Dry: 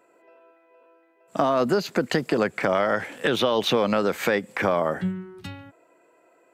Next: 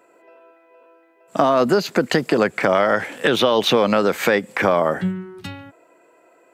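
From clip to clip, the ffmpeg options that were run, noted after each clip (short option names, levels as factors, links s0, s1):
-af "lowshelf=f=100:g=-5.5,volume=1.88"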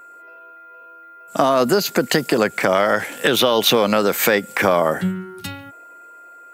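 -af "dynaudnorm=f=230:g=9:m=3.76,aeval=exprs='val(0)+0.0112*sin(2*PI*1400*n/s)':c=same,aemphasis=mode=production:type=50fm,volume=0.841"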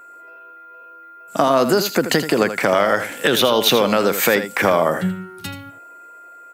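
-af "aecho=1:1:82:0.299"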